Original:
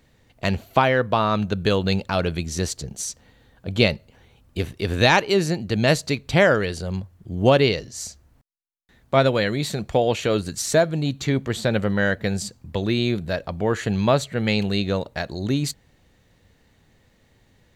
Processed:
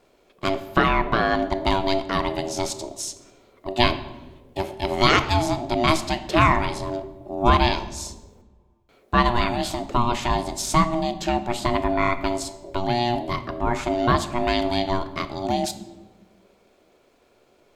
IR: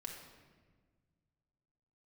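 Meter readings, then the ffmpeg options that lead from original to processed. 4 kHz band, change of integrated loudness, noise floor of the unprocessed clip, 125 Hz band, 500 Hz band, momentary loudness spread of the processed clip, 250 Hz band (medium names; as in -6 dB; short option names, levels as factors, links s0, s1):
0.0 dB, -1.0 dB, -60 dBFS, -4.0 dB, -3.5 dB, 12 LU, -1.5 dB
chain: -filter_complex "[0:a]aeval=exprs='val(0)*sin(2*PI*480*n/s)':c=same,asplit=2[s0][s1];[1:a]atrim=start_sample=2205,asetrate=66150,aresample=44100[s2];[s1][s2]afir=irnorm=-1:irlink=0,volume=1.41[s3];[s0][s3]amix=inputs=2:normalize=0,volume=0.794"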